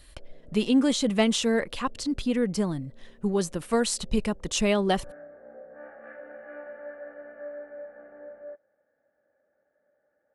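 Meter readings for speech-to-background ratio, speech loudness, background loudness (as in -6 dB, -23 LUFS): 18.0 dB, -26.5 LUFS, -44.5 LUFS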